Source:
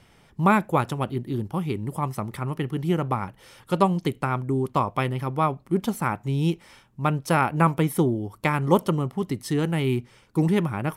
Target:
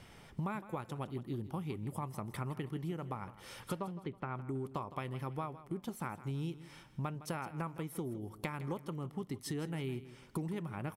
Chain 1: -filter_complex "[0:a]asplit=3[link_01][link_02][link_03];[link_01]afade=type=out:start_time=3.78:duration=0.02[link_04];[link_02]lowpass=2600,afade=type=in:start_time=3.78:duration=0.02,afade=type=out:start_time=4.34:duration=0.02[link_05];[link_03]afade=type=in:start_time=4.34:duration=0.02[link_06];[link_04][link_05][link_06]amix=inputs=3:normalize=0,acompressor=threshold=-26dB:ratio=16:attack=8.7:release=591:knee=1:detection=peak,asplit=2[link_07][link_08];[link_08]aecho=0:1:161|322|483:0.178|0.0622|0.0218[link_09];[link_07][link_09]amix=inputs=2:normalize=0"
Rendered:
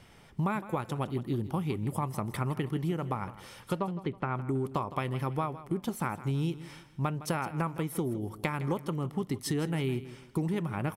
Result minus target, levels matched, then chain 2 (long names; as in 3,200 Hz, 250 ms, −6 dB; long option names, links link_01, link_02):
downward compressor: peak gain reduction −8 dB
-filter_complex "[0:a]asplit=3[link_01][link_02][link_03];[link_01]afade=type=out:start_time=3.78:duration=0.02[link_04];[link_02]lowpass=2600,afade=type=in:start_time=3.78:duration=0.02,afade=type=out:start_time=4.34:duration=0.02[link_05];[link_03]afade=type=in:start_time=4.34:duration=0.02[link_06];[link_04][link_05][link_06]amix=inputs=3:normalize=0,acompressor=threshold=-34.5dB:ratio=16:attack=8.7:release=591:knee=1:detection=peak,asplit=2[link_07][link_08];[link_08]aecho=0:1:161|322|483:0.178|0.0622|0.0218[link_09];[link_07][link_09]amix=inputs=2:normalize=0"